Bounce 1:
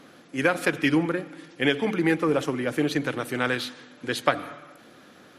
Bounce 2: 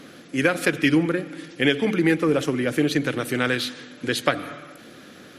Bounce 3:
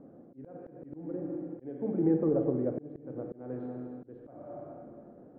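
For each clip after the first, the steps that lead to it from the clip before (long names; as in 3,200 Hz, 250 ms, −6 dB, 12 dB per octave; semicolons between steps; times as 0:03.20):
parametric band 910 Hz −7.5 dB 1 octave; in parallel at −1 dB: downward compressor, threshold −32 dBFS, peak gain reduction 14 dB; on the sum: level +2 dB
Chebyshev low-pass filter 730 Hz, order 3; four-comb reverb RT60 2 s, combs from 31 ms, DRR 4.5 dB; volume swells 444 ms; level −6.5 dB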